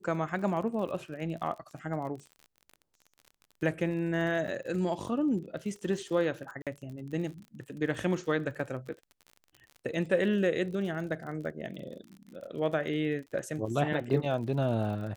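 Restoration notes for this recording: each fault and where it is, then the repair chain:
crackle 44 per s -40 dBFS
4.47–4.48 s: dropout 7.9 ms
6.62–6.67 s: dropout 47 ms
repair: de-click; interpolate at 4.47 s, 7.9 ms; interpolate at 6.62 s, 47 ms

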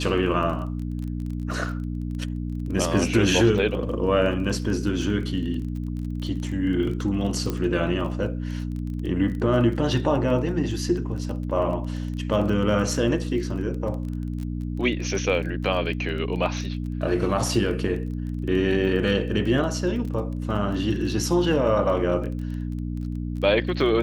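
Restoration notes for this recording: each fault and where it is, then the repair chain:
crackle 21 per s -32 dBFS
hum 60 Hz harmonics 5 -29 dBFS
7.50 s: pop -13 dBFS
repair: de-click; de-hum 60 Hz, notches 5

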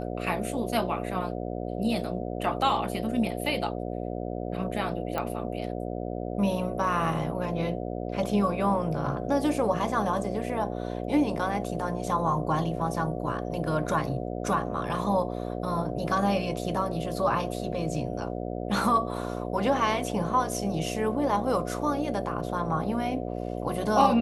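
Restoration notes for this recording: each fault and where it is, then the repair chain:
buzz 60 Hz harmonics 12 -33 dBFS
5.18 s: pop -17 dBFS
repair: de-click; de-hum 60 Hz, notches 12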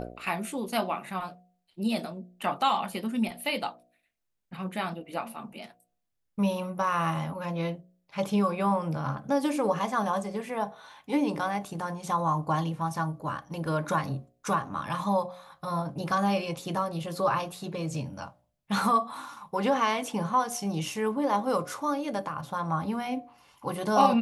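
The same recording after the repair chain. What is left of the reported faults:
nothing left

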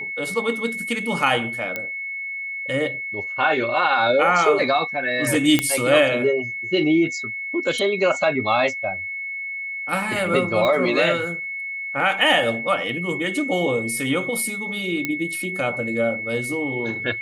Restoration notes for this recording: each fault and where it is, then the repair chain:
whine 2.2 kHz -27 dBFS
1.76 s: pop -12 dBFS
5.59 s: pop -3 dBFS
10.65 s: pop -11 dBFS
15.05 s: pop -9 dBFS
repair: de-click; band-stop 2.2 kHz, Q 30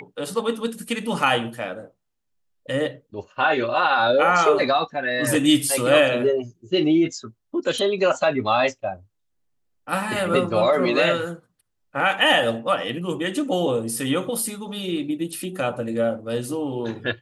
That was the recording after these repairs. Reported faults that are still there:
10.65 s: pop

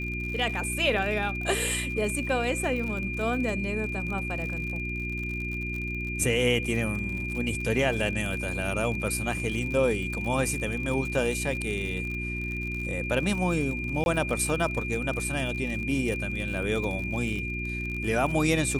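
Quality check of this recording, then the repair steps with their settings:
crackle 59 per s -33 dBFS
hum 60 Hz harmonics 6 -34 dBFS
whine 2.4 kHz -33 dBFS
14.04–14.06 s: dropout 21 ms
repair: de-click; de-hum 60 Hz, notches 6; band-stop 2.4 kHz, Q 30; interpolate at 14.04 s, 21 ms

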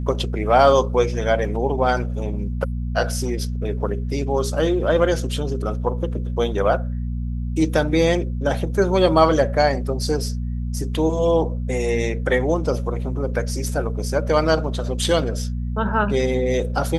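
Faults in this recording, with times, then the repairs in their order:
hum 60 Hz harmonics 4 -25 dBFS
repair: de-hum 60 Hz, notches 4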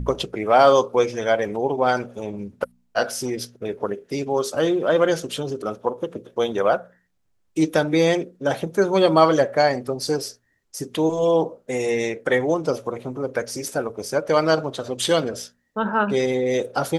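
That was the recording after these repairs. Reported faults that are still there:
nothing left

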